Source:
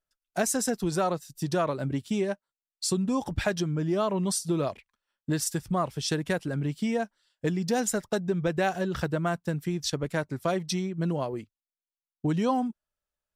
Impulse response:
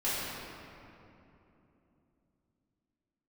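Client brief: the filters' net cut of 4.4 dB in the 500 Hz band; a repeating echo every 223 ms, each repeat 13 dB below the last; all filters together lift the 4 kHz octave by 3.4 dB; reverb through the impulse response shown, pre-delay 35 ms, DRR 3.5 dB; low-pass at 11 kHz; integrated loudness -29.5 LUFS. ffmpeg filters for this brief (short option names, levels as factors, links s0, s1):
-filter_complex "[0:a]lowpass=11000,equalizer=f=500:t=o:g=-6,equalizer=f=4000:t=o:g=4.5,aecho=1:1:223|446|669:0.224|0.0493|0.0108,asplit=2[s0][s1];[1:a]atrim=start_sample=2205,adelay=35[s2];[s1][s2]afir=irnorm=-1:irlink=0,volume=0.237[s3];[s0][s3]amix=inputs=2:normalize=0,volume=0.891"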